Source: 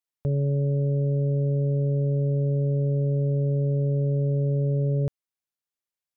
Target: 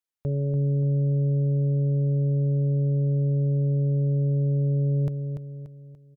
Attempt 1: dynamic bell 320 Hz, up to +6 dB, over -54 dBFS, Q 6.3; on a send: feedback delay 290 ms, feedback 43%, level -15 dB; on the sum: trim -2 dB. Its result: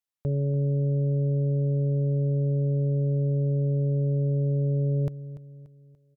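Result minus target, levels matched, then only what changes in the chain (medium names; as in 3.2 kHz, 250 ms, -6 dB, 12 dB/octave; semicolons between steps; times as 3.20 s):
echo-to-direct -8 dB
change: feedback delay 290 ms, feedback 43%, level -7 dB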